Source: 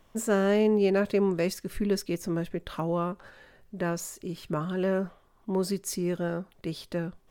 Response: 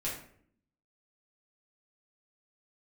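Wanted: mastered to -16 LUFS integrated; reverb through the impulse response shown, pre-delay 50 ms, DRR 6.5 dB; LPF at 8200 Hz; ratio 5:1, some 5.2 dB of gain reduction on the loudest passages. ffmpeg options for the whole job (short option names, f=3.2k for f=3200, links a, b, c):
-filter_complex "[0:a]lowpass=8.2k,acompressor=threshold=-25dB:ratio=5,asplit=2[a][b];[1:a]atrim=start_sample=2205,adelay=50[c];[b][c]afir=irnorm=-1:irlink=0,volume=-10dB[d];[a][d]amix=inputs=2:normalize=0,volume=15dB"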